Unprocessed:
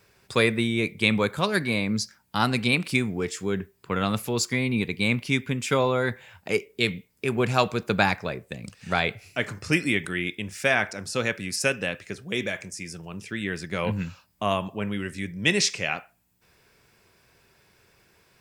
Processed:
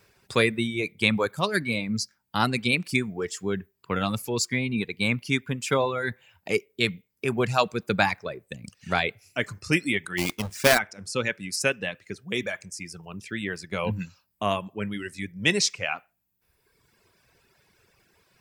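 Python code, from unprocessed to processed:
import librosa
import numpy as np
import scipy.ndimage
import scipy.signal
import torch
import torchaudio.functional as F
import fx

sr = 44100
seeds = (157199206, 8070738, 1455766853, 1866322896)

y = fx.halfwave_hold(x, sr, at=(10.17, 10.77), fade=0.02)
y = fx.dereverb_blind(y, sr, rt60_s=1.4)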